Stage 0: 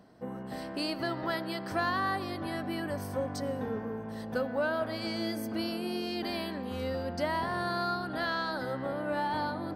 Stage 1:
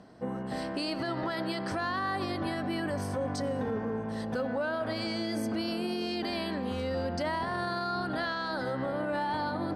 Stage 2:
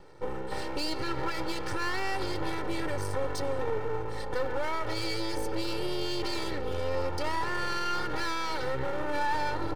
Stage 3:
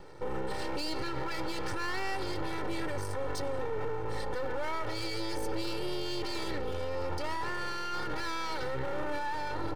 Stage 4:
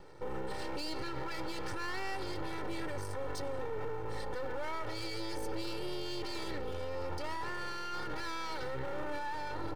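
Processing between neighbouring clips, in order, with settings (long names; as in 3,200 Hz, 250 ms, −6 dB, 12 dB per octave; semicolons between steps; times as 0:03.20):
low-pass filter 10,000 Hz 24 dB per octave; brickwall limiter −28.5 dBFS, peak gain reduction 10 dB; level +4.5 dB
half-wave rectification; comb filter 2.2 ms, depth 91%; level +2.5 dB
brickwall limiter −27.5 dBFS, peak gain reduction 10.5 dB; level +3 dB
floating-point word with a short mantissa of 6 bits; level −4 dB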